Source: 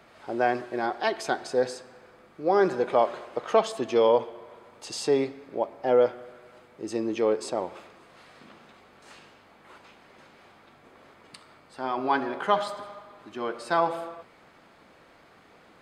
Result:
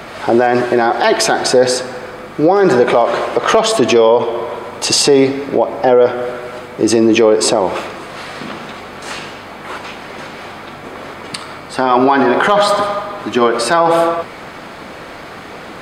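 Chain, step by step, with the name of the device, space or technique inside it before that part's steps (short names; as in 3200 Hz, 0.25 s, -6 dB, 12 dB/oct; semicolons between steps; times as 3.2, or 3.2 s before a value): loud club master (compressor 2:1, threshold -27 dBFS, peak gain reduction 7 dB; hard clip -17 dBFS, distortion -30 dB; maximiser +25.5 dB); gain -1 dB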